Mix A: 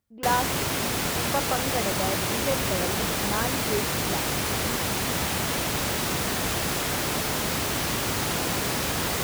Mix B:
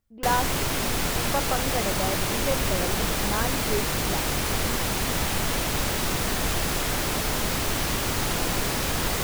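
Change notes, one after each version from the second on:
master: remove high-pass 77 Hz 12 dB/octave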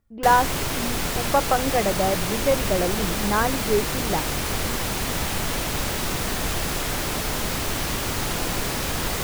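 speech +7.5 dB

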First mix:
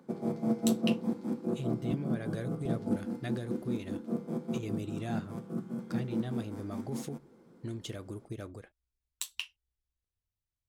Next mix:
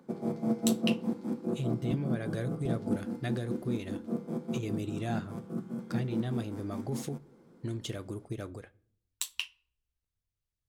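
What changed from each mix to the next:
speech: send on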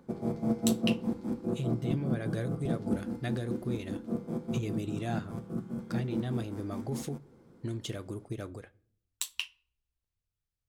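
background: remove high-pass 140 Hz 24 dB/octave

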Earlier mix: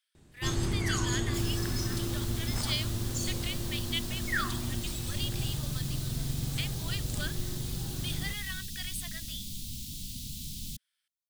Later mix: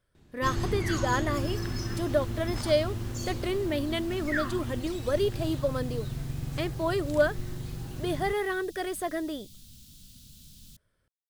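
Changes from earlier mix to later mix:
speech: remove resonant high-pass 2.9 kHz, resonance Q 1.6; first sound: add peaking EQ 8.6 kHz -10.5 dB 0.64 oct; second sound -11.5 dB

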